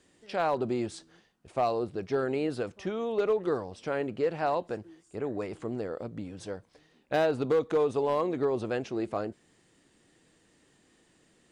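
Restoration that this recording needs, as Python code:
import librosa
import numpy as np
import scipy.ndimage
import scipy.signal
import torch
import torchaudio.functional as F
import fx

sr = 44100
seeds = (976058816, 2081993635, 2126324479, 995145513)

y = fx.fix_declip(x, sr, threshold_db=-19.5)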